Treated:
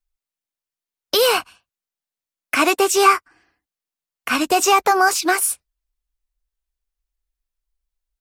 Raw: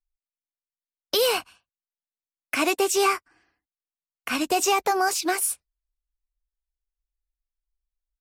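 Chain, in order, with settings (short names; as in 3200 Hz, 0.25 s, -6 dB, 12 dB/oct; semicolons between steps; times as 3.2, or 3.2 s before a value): dynamic EQ 1300 Hz, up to +6 dB, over -37 dBFS, Q 1.6; gain +5 dB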